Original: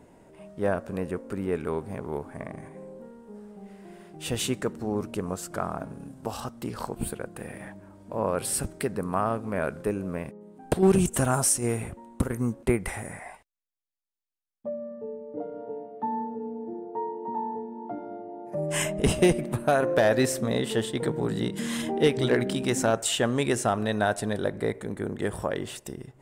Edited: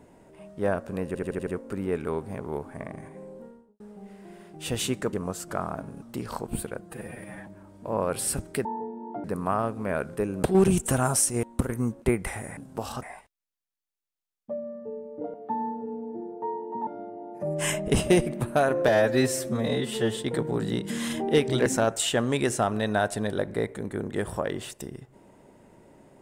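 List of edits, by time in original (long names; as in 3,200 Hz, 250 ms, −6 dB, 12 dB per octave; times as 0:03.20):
0:01.07: stutter 0.08 s, 6 plays
0:03.01–0:03.40: fade out and dull
0:04.73–0:05.16: remove
0:06.05–0:06.50: move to 0:13.18
0:07.29–0:07.73: time-stretch 1.5×
0:10.10–0:10.71: remove
0:11.71–0:12.04: remove
0:15.50–0:15.87: remove
0:17.40–0:17.99: move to 0:08.91
0:20.00–0:20.86: time-stretch 1.5×
0:22.35–0:22.72: remove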